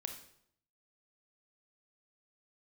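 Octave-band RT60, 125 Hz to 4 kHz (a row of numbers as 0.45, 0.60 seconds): 0.85, 0.75, 0.70, 0.65, 0.60, 0.60 seconds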